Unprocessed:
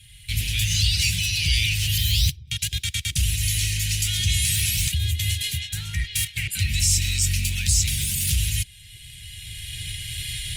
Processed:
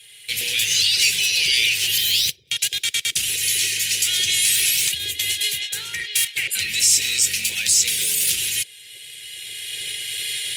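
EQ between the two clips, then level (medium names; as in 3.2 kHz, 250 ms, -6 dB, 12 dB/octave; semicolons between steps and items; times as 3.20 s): resonant high-pass 470 Hz, resonance Q 4.9; +5.5 dB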